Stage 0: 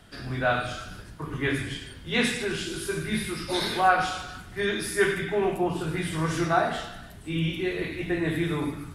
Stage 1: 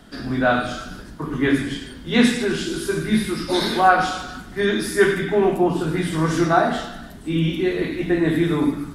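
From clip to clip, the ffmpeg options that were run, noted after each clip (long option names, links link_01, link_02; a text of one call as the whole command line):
ffmpeg -i in.wav -af "equalizer=frequency=100:width_type=o:width=0.67:gain=-9,equalizer=frequency=250:width_type=o:width=0.67:gain=8,equalizer=frequency=2500:width_type=o:width=0.67:gain=-5,equalizer=frequency=10000:width_type=o:width=0.67:gain=-4,volume=6dB" out.wav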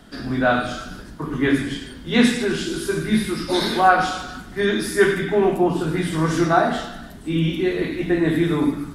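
ffmpeg -i in.wav -af anull out.wav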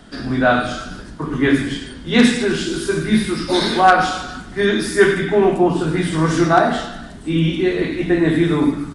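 ffmpeg -i in.wav -af "aeval=exprs='0.562*(abs(mod(val(0)/0.562+3,4)-2)-1)':channel_layout=same,aresample=22050,aresample=44100,volume=3.5dB" out.wav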